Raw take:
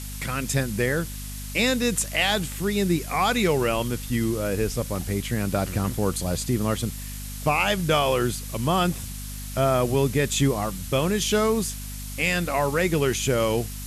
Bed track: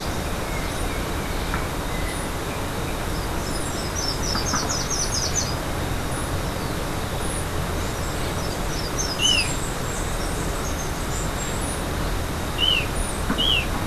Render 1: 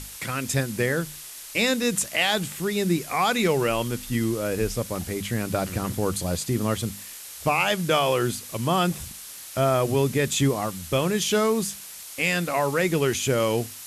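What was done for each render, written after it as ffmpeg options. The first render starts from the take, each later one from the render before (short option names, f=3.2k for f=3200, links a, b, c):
-af "bandreject=f=50:t=h:w=6,bandreject=f=100:t=h:w=6,bandreject=f=150:t=h:w=6,bandreject=f=200:t=h:w=6,bandreject=f=250:t=h:w=6"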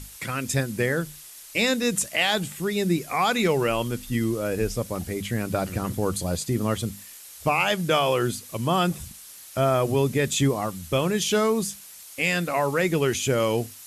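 -af "afftdn=nr=6:nf=-41"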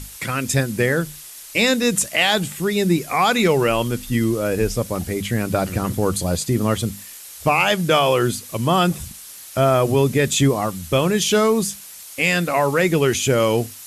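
-af "acontrast=41"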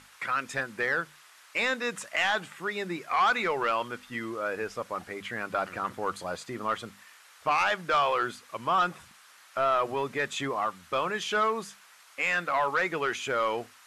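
-af "bandpass=f=1.3k:t=q:w=1.6:csg=0,asoftclip=type=tanh:threshold=-17.5dB"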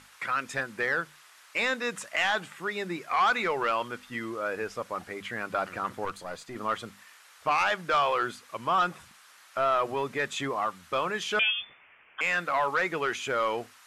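-filter_complex "[0:a]asettb=1/sr,asplit=3[a][b][c];[a]atrim=end=6.054[d];[b]atrim=start=6.05:end=6.56,asetpts=PTS-STARTPTS,afade=t=in:d=0.004:c=qsin,afade=t=out:st=0.506:d=0.004:c=qsin,aeval=exprs='(tanh(15.8*val(0)+0.65)-tanh(0.65))/15.8':c=same[e];[c]atrim=start=6.556[f];[d][e]acrossfade=d=0.004:c1=hsin:c2=qsin[g];[g][f]acrossfade=d=0.004:c1=qsin:c2=hsin,asettb=1/sr,asplit=3[h][i][j];[h]atrim=end=11.394[k];[i]atrim=start=11.39:end=12.21,asetpts=PTS-STARTPTS,afade=t=in:d=0.004:c=qsin,afade=t=out:st=0.816:d=0.004:c=qsin,lowpass=f=3.1k:t=q:w=0.5098,lowpass=f=3.1k:t=q:w=0.6013,lowpass=f=3.1k:t=q:w=0.9,lowpass=f=3.1k:t=q:w=2.563,afreqshift=-3700[l];[j]atrim=start=12.206[m];[k][l]acrossfade=d=0.004:c1=hsin:c2=qsin[n];[n][m]acrossfade=d=0.004:c1=qsin:c2=hsin"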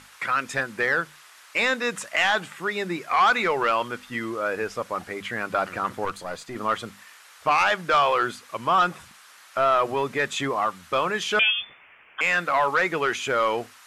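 -af "volume=5dB"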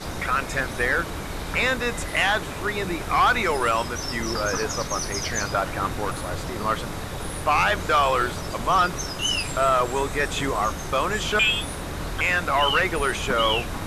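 -filter_complex "[1:a]volume=-5.5dB[a];[0:a][a]amix=inputs=2:normalize=0"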